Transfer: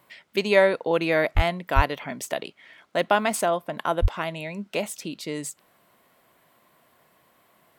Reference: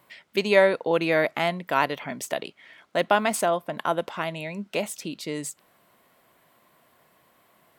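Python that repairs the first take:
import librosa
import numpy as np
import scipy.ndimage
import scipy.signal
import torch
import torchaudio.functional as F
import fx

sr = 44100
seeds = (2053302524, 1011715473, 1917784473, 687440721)

y = fx.fix_deplosive(x, sr, at_s=(1.35, 1.75, 4.01))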